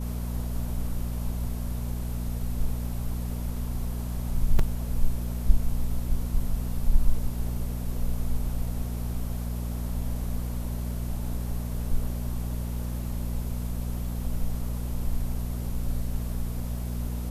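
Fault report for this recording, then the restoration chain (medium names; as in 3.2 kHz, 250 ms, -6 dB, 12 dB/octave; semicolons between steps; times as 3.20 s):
hum 60 Hz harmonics 4 -31 dBFS
4.59 s: dropout 3.9 ms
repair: de-hum 60 Hz, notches 4; interpolate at 4.59 s, 3.9 ms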